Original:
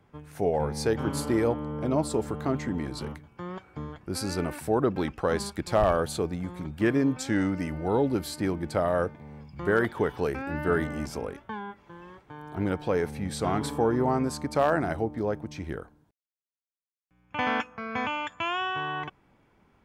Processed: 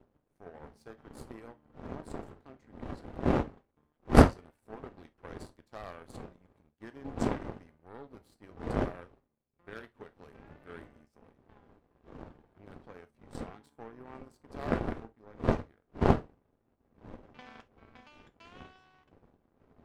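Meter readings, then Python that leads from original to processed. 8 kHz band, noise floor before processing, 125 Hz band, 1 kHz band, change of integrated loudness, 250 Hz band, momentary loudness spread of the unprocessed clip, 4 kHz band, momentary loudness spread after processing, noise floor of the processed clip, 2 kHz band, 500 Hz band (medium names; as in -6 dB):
-14.0 dB, -71 dBFS, -3.5 dB, -8.0 dB, -3.0 dB, -6.5 dB, 14 LU, -12.5 dB, 22 LU, -76 dBFS, -11.0 dB, -9.5 dB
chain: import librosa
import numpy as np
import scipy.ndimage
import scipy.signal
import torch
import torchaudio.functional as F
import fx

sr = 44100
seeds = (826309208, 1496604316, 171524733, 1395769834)

y = fx.dmg_wind(x, sr, seeds[0], corner_hz=390.0, level_db=-23.0)
y = fx.power_curve(y, sr, exponent=2.0)
y = fx.rev_gated(y, sr, seeds[1], gate_ms=90, shape='falling', drr_db=10.0)
y = y * 10.0 ** (-3.5 / 20.0)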